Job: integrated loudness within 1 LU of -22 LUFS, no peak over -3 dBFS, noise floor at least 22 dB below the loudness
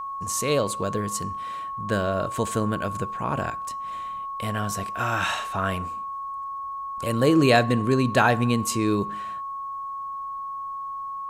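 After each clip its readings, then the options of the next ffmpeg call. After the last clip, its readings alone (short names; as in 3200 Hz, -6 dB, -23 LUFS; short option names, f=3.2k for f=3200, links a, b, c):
steady tone 1100 Hz; tone level -30 dBFS; loudness -25.5 LUFS; peak -4.5 dBFS; loudness target -22.0 LUFS
-> -af "bandreject=f=1.1k:w=30"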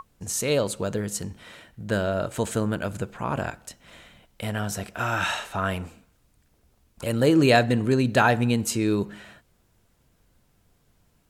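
steady tone none; loudness -25.0 LUFS; peak -5.0 dBFS; loudness target -22.0 LUFS
-> -af "volume=3dB,alimiter=limit=-3dB:level=0:latency=1"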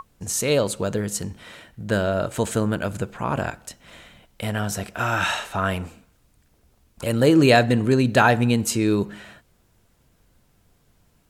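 loudness -22.0 LUFS; peak -3.0 dBFS; noise floor -62 dBFS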